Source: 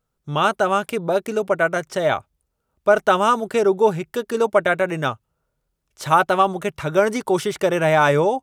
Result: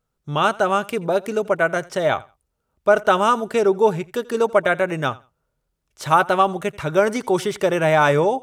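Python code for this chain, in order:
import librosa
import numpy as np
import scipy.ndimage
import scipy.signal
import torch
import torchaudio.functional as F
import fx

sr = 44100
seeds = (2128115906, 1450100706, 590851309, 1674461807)

y = fx.high_shelf(x, sr, hz=12000.0, db=-3.0)
y = fx.echo_feedback(y, sr, ms=85, feedback_pct=19, wet_db=-22.5)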